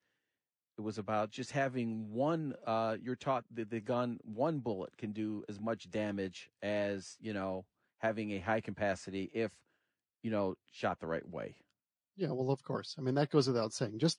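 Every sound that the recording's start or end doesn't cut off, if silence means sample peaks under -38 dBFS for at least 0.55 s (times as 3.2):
0.79–9.47
10.25–11.47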